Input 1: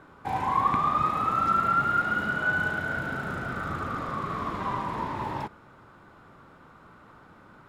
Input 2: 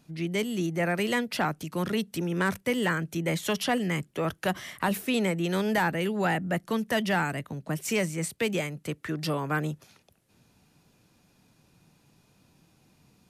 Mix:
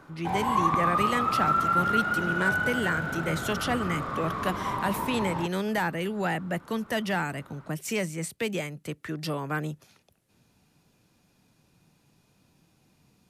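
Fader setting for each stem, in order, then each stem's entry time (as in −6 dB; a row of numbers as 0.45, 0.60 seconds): −0.5, −2.0 decibels; 0.00, 0.00 seconds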